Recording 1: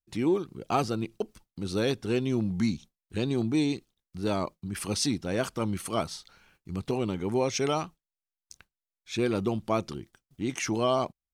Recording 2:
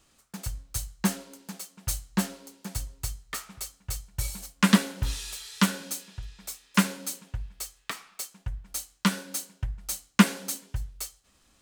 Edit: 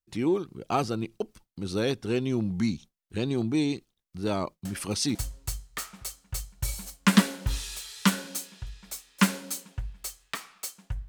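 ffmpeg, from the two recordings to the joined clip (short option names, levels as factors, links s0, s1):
-filter_complex "[1:a]asplit=2[s0][s1];[0:a]apad=whole_dur=11.08,atrim=end=11.08,atrim=end=5.152[s2];[s1]atrim=start=2.708:end=8.64[s3];[s0]atrim=start=2.21:end=2.71,asetpts=PTS-STARTPTS,volume=0.316,afade=t=in:d=0.004:c=hsin,afade=t=out:st=0.496:d=0.004:c=hsin,adelay=205065S[s4];[s2][s3]acrossfade=d=0.004:c1=hsin:c2=hsin[s5];[s5][s4]amix=inputs=2:normalize=0"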